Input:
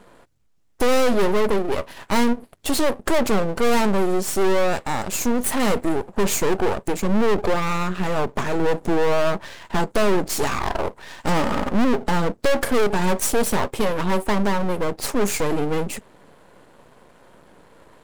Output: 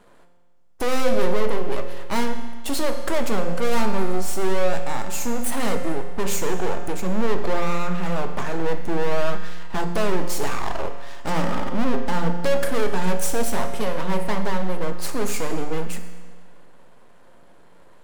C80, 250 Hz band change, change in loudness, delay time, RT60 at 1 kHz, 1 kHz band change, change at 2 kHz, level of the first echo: 9.0 dB, -4.5 dB, -4.0 dB, no echo, 1.6 s, -3.5 dB, -3.5 dB, no echo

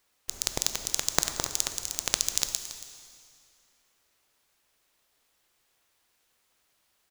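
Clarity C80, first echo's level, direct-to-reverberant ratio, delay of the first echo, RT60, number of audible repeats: 9.0 dB, -15.0 dB, 8.0 dB, 278 ms, 2.4 s, 1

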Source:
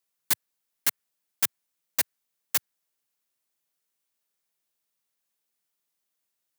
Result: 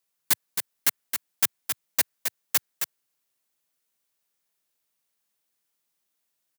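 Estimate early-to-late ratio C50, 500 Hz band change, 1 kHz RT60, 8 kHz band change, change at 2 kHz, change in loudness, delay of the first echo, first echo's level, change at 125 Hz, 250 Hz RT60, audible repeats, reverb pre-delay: no reverb, +3.0 dB, no reverb, +3.0 dB, +3.0 dB, +1.5 dB, 268 ms, -6.5 dB, +3.0 dB, no reverb, 1, no reverb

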